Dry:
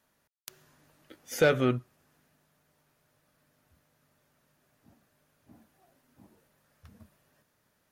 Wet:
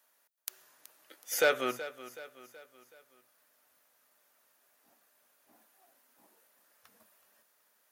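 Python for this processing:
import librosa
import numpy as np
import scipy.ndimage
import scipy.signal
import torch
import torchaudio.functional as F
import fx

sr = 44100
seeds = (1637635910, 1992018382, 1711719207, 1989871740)

p1 = scipy.signal.sosfilt(scipy.signal.butter(2, 560.0, 'highpass', fs=sr, output='sos'), x)
p2 = fx.high_shelf(p1, sr, hz=9100.0, db=10.0)
y = p2 + fx.echo_feedback(p2, sr, ms=375, feedback_pct=48, wet_db=-15.0, dry=0)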